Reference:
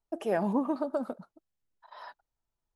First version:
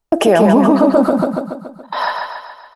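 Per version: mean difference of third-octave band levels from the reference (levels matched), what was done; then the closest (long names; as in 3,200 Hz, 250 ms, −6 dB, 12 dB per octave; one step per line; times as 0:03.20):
7.0 dB: noise gate −51 dBFS, range −18 dB
downward compressor, threshold −32 dBFS, peak gain reduction 9 dB
repeating echo 141 ms, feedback 53%, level −4.5 dB
boost into a limiter +28.5 dB
level −1 dB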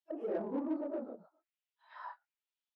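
5.0 dB: random phases in long frames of 100 ms
envelope filter 350–3,300 Hz, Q 2.5, down, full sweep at −35.5 dBFS
in parallel at −6.5 dB: soft clipping −39 dBFS, distortion −7 dB
on the sum: low-shelf EQ 250 Hz −11 dB
level +1 dB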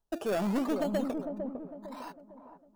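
10.0 dB: parametric band 2,100 Hz −14.5 dB 0.4 octaves
in parallel at −5 dB: sample-and-hold swept by an LFO 17×, swing 60% 0.83 Hz
on the sum: soft clipping −25 dBFS, distortion −10 dB
delay with a low-pass on its return 453 ms, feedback 39%, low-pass 740 Hz, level −4.5 dB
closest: second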